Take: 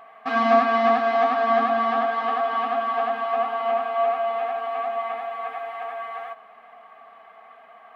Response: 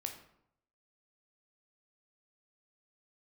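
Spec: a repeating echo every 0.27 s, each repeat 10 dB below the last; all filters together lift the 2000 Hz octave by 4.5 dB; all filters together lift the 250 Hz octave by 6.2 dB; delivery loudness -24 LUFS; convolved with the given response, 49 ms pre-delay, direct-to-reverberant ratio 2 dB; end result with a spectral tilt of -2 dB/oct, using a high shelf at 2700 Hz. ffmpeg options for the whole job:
-filter_complex "[0:a]equalizer=f=250:t=o:g=6.5,equalizer=f=2k:t=o:g=7,highshelf=f=2.7k:g=-3.5,aecho=1:1:270|540|810|1080:0.316|0.101|0.0324|0.0104,asplit=2[a][b];[1:a]atrim=start_sample=2205,adelay=49[c];[b][c]afir=irnorm=-1:irlink=0,volume=-1dB[d];[a][d]amix=inputs=2:normalize=0,volume=-4dB"

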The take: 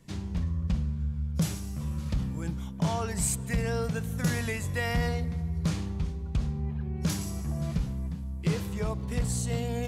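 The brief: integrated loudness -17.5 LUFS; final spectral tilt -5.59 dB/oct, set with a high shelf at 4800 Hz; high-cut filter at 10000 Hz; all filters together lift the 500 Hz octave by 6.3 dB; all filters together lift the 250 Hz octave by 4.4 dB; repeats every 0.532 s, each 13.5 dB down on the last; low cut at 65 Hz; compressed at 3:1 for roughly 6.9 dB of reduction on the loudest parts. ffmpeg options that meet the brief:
-af "highpass=65,lowpass=10k,equalizer=f=250:t=o:g=6,equalizer=f=500:t=o:g=5.5,highshelf=f=4.8k:g=7,acompressor=threshold=-28dB:ratio=3,aecho=1:1:532|1064:0.211|0.0444,volume=14.5dB"

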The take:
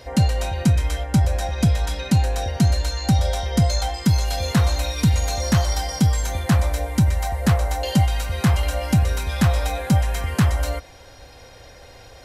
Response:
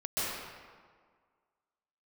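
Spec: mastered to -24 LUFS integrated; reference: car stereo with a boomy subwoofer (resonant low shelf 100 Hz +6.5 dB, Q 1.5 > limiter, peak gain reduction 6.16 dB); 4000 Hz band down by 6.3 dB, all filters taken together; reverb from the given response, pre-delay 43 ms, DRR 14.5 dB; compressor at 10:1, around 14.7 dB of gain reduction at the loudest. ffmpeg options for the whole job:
-filter_complex "[0:a]equalizer=f=4k:t=o:g=-8,acompressor=threshold=-28dB:ratio=10,asplit=2[a][b];[1:a]atrim=start_sample=2205,adelay=43[c];[b][c]afir=irnorm=-1:irlink=0,volume=-22.5dB[d];[a][d]amix=inputs=2:normalize=0,lowshelf=f=100:t=q:w=1.5:g=6.5,volume=5.5dB,alimiter=limit=-15.5dB:level=0:latency=1"

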